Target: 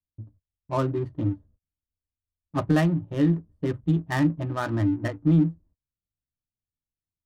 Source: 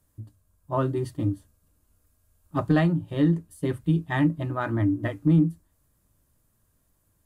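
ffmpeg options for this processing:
-af "agate=range=-26dB:threshold=-53dB:ratio=16:detection=peak,adynamicsmooth=sensitivity=7.5:basefreq=510"

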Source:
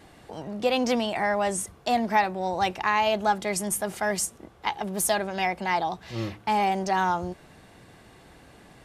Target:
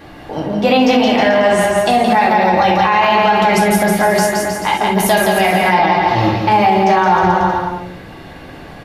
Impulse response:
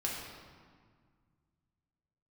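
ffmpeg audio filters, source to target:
-filter_complex "[0:a]equalizer=f=8.3k:t=o:w=0.95:g=-13,aecho=1:1:170|314.5|437.3|541.7|630.5:0.631|0.398|0.251|0.158|0.1[a];[1:a]atrim=start_sample=2205,afade=t=out:st=0.13:d=0.01,atrim=end_sample=6174[b];[a][b]afir=irnorm=-1:irlink=0,alimiter=level_in=16dB:limit=-1dB:release=50:level=0:latency=1,volume=-2.5dB"

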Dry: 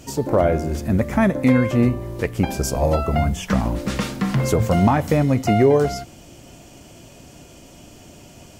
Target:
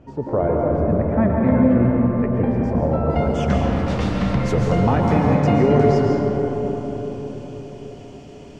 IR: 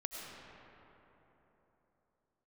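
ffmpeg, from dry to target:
-filter_complex "[0:a]asetnsamples=n=441:p=0,asendcmd='3.1 lowpass f 4900',lowpass=1.3k[a];[1:a]atrim=start_sample=2205,asetrate=31752,aresample=44100[b];[a][b]afir=irnorm=-1:irlink=0,volume=-1.5dB"

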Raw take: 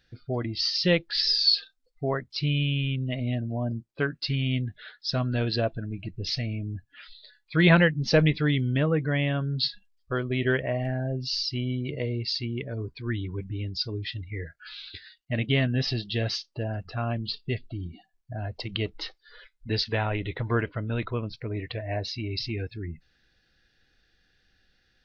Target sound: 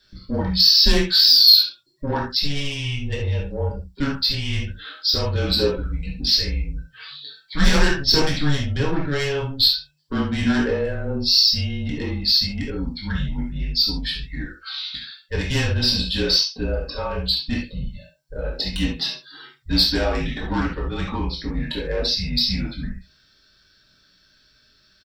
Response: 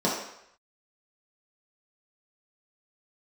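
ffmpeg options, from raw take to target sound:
-filter_complex "[0:a]aecho=1:1:21|69:0.355|0.251,asoftclip=type=tanh:threshold=-21.5dB,crystalizer=i=6:c=0[a];[1:a]atrim=start_sample=2205,atrim=end_sample=3969[b];[a][b]afir=irnorm=-1:irlink=0,afreqshift=-150,volume=-9dB"

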